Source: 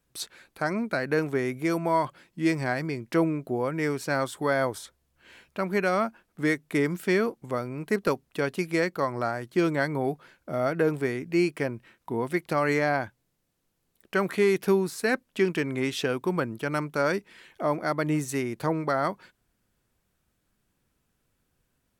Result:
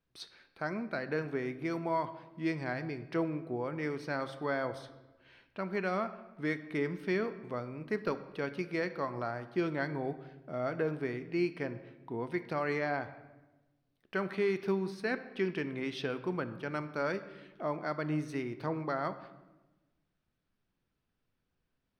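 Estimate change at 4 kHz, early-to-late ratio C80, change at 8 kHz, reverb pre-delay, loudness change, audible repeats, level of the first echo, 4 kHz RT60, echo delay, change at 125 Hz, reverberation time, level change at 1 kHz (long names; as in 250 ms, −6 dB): −9.5 dB, 15.0 dB, below −15 dB, 3 ms, −8.0 dB, no echo audible, no echo audible, 0.75 s, no echo audible, −7.5 dB, 1.1 s, −8.0 dB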